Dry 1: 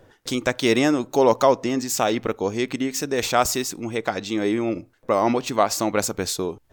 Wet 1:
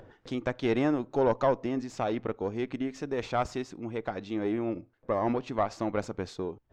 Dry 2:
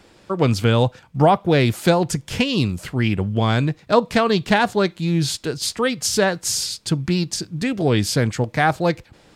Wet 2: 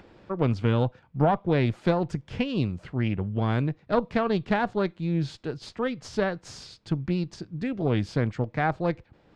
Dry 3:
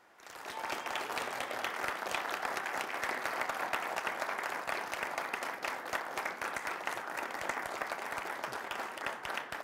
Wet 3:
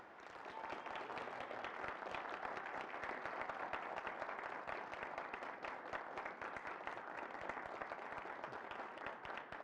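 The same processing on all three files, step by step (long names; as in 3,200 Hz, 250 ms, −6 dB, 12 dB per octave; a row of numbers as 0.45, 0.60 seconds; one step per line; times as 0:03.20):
harmonic generator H 4 −18 dB, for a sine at −1 dBFS
upward compression, threshold −36 dBFS
head-to-tape spacing loss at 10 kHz 27 dB
level −6.5 dB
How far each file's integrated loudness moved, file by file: −8.5, −7.5, −10.5 LU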